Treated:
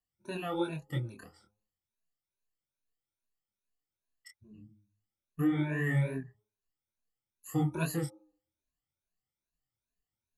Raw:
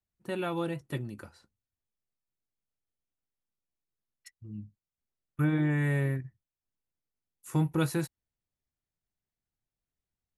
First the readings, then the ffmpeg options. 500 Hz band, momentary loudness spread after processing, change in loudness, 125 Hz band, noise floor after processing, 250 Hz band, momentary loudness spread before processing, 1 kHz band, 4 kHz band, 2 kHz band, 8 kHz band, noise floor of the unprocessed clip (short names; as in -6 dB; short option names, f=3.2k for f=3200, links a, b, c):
-2.5 dB, 18 LU, -2.5 dB, -3.0 dB, under -85 dBFS, -2.0 dB, 18 LU, -2.0 dB, -2.0 dB, -1.5 dB, -0.5 dB, under -85 dBFS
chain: -af "afftfilt=real='re*pow(10,22/40*sin(2*PI*(1.5*log(max(b,1)*sr/1024/100)/log(2)-(2.4)*(pts-256)/sr)))':imag='im*pow(10,22/40*sin(2*PI*(1.5*log(max(b,1)*sr/1024/100)/log(2)-(2.4)*(pts-256)/sr)))':win_size=1024:overlap=0.75,bandreject=f=103.5:t=h:w=4,bandreject=f=207:t=h:w=4,bandreject=f=310.5:t=h:w=4,bandreject=f=414:t=h:w=4,bandreject=f=517.5:t=h:w=4,bandreject=f=621:t=h:w=4,bandreject=f=724.5:t=h:w=4,bandreject=f=828:t=h:w=4,bandreject=f=931.5:t=h:w=4,bandreject=f=1.035k:t=h:w=4,bandreject=f=1.1385k:t=h:w=4,bandreject=f=1.242k:t=h:w=4,flanger=delay=22.5:depth=5.2:speed=2.9,volume=-3.5dB"